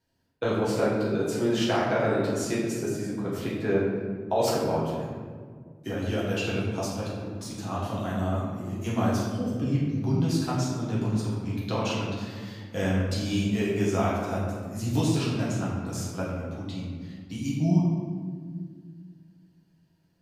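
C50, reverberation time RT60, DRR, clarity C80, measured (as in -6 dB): 0.0 dB, 1.8 s, -7.5 dB, 2.0 dB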